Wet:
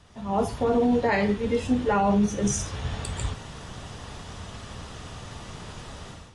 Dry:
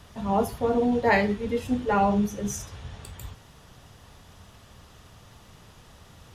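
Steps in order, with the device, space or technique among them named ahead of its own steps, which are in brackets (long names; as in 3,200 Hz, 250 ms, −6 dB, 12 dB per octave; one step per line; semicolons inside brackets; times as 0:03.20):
low-bitrate web radio (automatic gain control gain up to 15 dB; brickwall limiter −9.5 dBFS, peak gain reduction 8 dB; level −5 dB; AAC 32 kbit/s 22,050 Hz)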